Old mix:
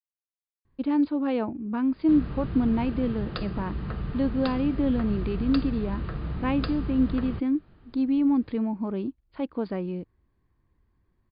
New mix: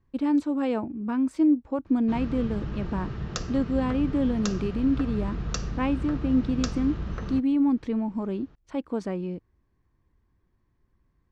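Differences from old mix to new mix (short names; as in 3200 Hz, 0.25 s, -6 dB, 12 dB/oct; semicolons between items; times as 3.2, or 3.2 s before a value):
speech: entry -0.65 s; master: remove brick-wall FIR low-pass 5000 Hz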